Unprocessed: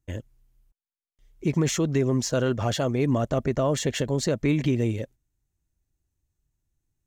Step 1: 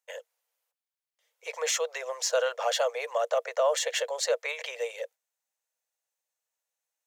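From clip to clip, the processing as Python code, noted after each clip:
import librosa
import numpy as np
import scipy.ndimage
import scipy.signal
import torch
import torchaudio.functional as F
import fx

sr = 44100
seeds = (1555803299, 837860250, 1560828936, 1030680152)

y = scipy.signal.sosfilt(scipy.signal.cheby1(8, 1.0, 470.0, 'highpass', fs=sr, output='sos'), x)
y = y * librosa.db_to_amplitude(2.0)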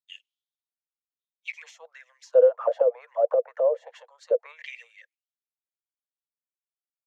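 y = fx.auto_wah(x, sr, base_hz=500.0, top_hz=3800.0, q=8.1, full_db=-22.5, direction='down')
y = fx.band_widen(y, sr, depth_pct=100)
y = y * librosa.db_to_amplitude(8.5)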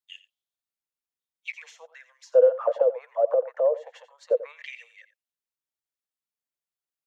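y = x + 10.0 ** (-16.0 / 20.0) * np.pad(x, (int(88 * sr / 1000.0), 0))[:len(x)]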